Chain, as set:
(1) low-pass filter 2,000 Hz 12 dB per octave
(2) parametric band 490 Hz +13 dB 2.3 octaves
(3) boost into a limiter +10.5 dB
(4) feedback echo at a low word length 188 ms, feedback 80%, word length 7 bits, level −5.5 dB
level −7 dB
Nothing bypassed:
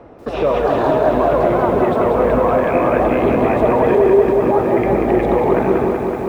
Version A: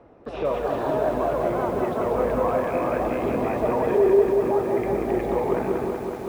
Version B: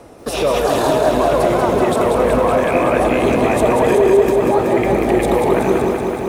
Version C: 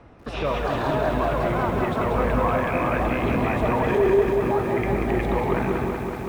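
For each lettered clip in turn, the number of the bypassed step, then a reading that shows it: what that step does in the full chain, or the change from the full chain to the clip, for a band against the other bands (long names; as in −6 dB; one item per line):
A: 3, change in crest factor +2.0 dB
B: 1, 2 kHz band +2.5 dB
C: 2, 125 Hz band +5.0 dB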